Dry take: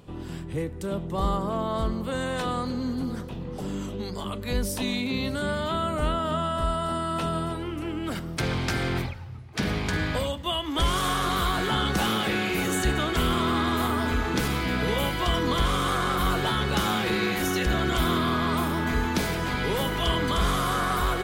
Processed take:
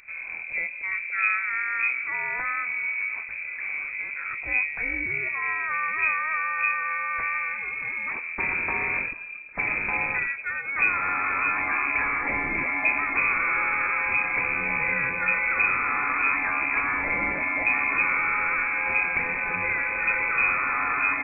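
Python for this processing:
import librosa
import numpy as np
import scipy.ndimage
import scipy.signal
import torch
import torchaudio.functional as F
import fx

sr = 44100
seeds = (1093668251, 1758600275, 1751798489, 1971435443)

y = fx.freq_invert(x, sr, carrier_hz=2500)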